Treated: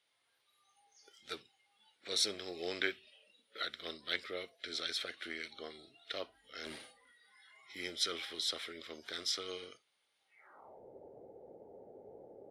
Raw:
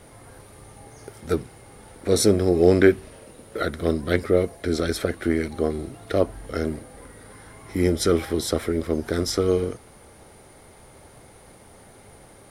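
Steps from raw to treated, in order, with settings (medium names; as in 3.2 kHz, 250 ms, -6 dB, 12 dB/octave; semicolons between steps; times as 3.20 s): band-pass sweep 3.4 kHz -> 460 Hz, 10.25–10.83 s; 6.44–7.70 s: transient shaper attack -5 dB, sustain +10 dB; spectral noise reduction 16 dB; trim +1 dB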